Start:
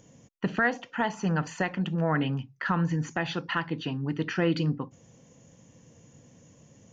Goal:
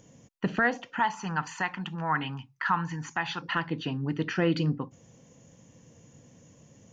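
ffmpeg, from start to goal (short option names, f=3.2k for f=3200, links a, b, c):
-filter_complex "[0:a]asettb=1/sr,asplit=3[a][b][c];[a]atrim=end=0.994[d];[b]atrim=start=0.99:end=3.42,asetpts=PTS-STARTPTS,afade=t=in:d=0.004:c=qsin,afade=t=out:st=2.426:d=0.004:c=qsin,lowshelf=f=720:t=q:w=3:g=-7[e];[c]atrim=start=3.416[f];[d][e]acrossfade=d=0.004:c1=hsin:c2=qsin[g];[g][f]acrossfade=d=0.004:c1=qsin:c2=hsin"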